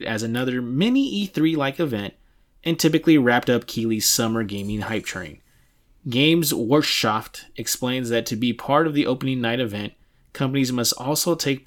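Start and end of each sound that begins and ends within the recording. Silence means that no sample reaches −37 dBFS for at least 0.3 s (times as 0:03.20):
0:02.64–0:05.34
0:06.06–0:09.89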